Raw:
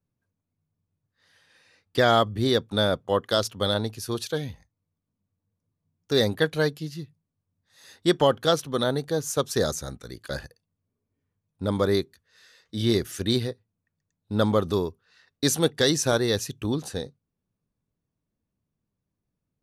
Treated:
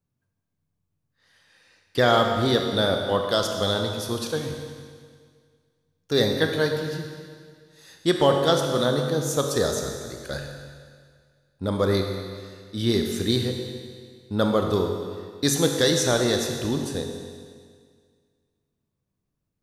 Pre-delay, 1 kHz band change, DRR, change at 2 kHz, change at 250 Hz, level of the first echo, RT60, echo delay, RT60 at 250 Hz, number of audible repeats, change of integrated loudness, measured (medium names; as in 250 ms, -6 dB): 22 ms, +1.5 dB, 3.0 dB, +1.5 dB, +1.5 dB, no echo, 1.9 s, no echo, 1.9 s, no echo, +1.0 dB